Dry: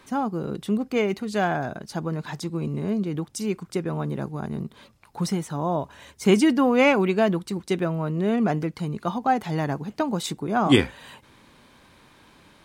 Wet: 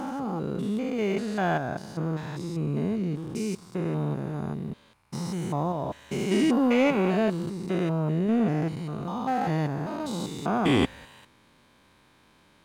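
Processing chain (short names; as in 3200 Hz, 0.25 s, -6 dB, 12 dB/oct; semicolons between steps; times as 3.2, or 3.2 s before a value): stepped spectrum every 0.2 s; sample leveller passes 1; gain -3 dB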